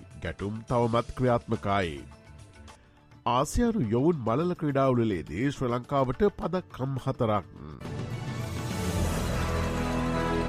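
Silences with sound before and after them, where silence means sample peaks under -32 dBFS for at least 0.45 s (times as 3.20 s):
2.00–3.26 s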